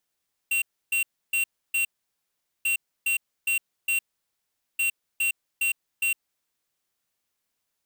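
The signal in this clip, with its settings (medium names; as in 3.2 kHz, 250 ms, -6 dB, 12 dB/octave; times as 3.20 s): beep pattern square 2.74 kHz, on 0.11 s, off 0.30 s, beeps 4, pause 0.80 s, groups 3, -24 dBFS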